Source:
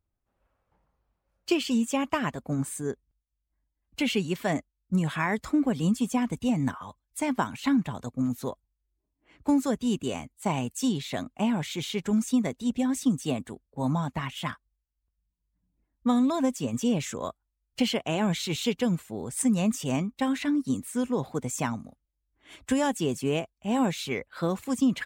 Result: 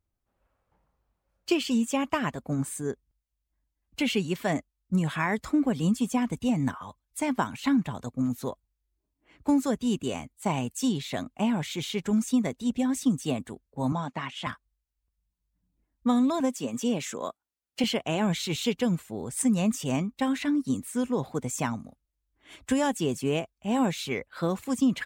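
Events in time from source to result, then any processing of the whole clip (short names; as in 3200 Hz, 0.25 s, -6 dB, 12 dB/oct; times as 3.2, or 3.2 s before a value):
13.92–14.47 BPF 200–6800 Hz
16.4–17.84 HPF 210 Hz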